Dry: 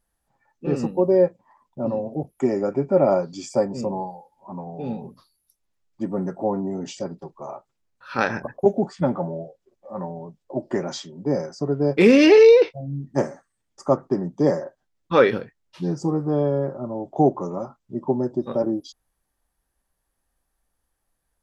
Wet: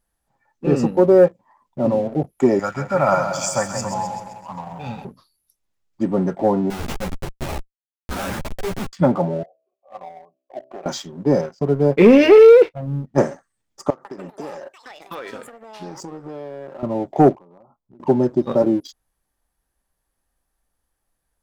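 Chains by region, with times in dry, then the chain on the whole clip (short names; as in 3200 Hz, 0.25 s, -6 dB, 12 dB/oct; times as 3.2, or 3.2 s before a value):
2.59–5.05 EQ curve 110 Hz 0 dB, 390 Hz -18 dB, 560 Hz -8 dB, 1400 Hz +9 dB, 4100 Hz +3 dB, 6300 Hz +10 dB + split-band echo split 960 Hz, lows 0.175 s, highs 0.13 s, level -7.5 dB
6.7–8.93 dynamic EQ 310 Hz, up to -6 dB, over -34 dBFS, Q 1.5 + Schmitt trigger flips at -32 dBFS + ensemble effect
9.43–10.86 vowel filter a + de-hum 64.88 Hz, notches 10
11.41–13.18 G.711 law mismatch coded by A + LPF 2000 Hz 6 dB/oct + notch 310 Hz, Q 8.2
13.9–16.83 HPF 740 Hz 6 dB/oct + compressor 8:1, threshold -35 dBFS + echoes that change speed 0.149 s, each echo +7 st, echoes 2, each echo -6 dB
17.35–18 ladder low-pass 1200 Hz, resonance 35% + compressor 8:1, threshold -47 dBFS
whole clip: dynamic EQ 4400 Hz, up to -4 dB, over -43 dBFS, Q 1.3; sample leveller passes 1; gain +2.5 dB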